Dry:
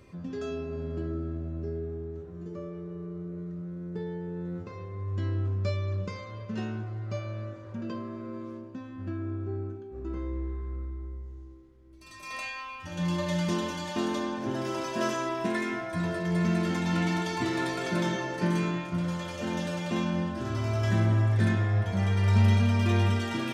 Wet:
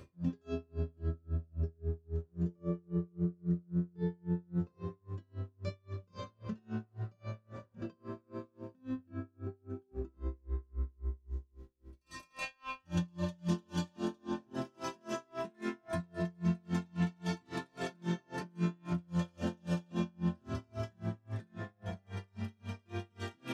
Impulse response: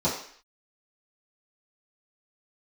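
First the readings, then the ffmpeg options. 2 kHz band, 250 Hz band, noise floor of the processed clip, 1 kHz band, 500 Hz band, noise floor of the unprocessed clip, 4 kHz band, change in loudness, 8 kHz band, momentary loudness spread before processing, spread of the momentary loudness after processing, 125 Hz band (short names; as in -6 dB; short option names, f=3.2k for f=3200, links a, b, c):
-12.5 dB, -7.0 dB, -71 dBFS, -11.0 dB, -9.0 dB, -44 dBFS, -12.0 dB, -9.0 dB, -11.0 dB, 15 LU, 11 LU, -10.0 dB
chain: -filter_complex "[0:a]bandreject=f=2.1k:w=20,acompressor=threshold=-36dB:ratio=6,asplit=2[a][b];[1:a]atrim=start_sample=2205,lowshelf=f=190:g=11.5,adelay=22[c];[b][c]afir=irnorm=-1:irlink=0,volume=-22dB[d];[a][d]amix=inputs=2:normalize=0,aeval=exprs='val(0)*pow(10,-36*(0.5-0.5*cos(2*PI*3.7*n/s))/20)':c=same,volume=3dB"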